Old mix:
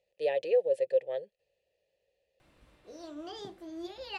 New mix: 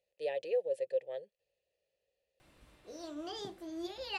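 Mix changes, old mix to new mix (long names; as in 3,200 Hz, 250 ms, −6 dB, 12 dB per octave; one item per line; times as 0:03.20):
speech −6.5 dB
master: add high-shelf EQ 5,200 Hz +6 dB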